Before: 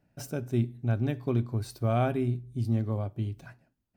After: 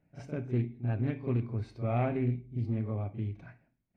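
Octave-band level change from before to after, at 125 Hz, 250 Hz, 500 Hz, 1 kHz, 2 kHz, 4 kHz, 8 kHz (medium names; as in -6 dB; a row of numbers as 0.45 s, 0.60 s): -3.0 dB, -3.0 dB, -4.0 dB, -4.5 dB, -3.5 dB, under -10 dB, under -15 dB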